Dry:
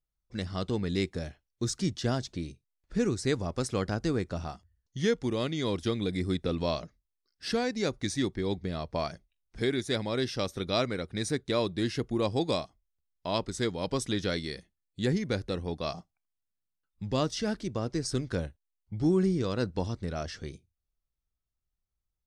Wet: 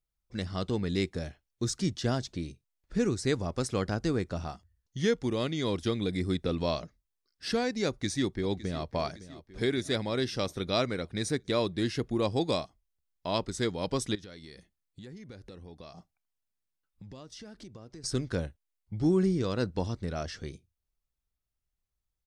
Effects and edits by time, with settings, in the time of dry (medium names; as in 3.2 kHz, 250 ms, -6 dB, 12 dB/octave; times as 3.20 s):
7.87–8.93 s: echo throw 560 ms, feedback 60%, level -16 dB
14.15–18.04 s: compression, threshold -44 dBFS